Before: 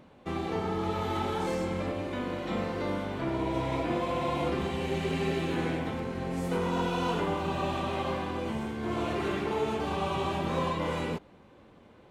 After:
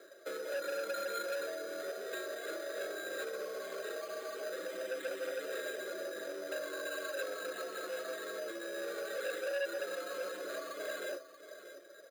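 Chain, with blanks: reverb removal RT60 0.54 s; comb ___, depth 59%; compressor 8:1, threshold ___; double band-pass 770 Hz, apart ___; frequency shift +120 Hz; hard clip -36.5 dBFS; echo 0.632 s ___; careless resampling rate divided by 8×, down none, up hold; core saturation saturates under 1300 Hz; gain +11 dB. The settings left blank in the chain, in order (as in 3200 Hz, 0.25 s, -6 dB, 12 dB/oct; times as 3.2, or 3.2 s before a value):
4 ms, -35 dBFS, 1.8 oct, -13.5 dB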